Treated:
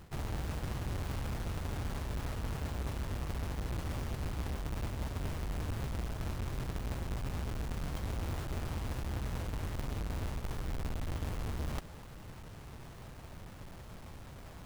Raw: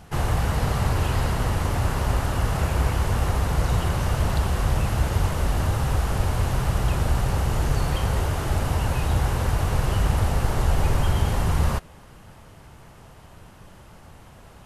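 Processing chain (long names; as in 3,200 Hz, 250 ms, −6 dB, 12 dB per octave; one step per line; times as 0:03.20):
each half-wave held at its own peak
reversed playback
downward compressor 6 to 1, threshold −29 dBFS, peak gain reduction 17 dB
reversed playback
level −7 dB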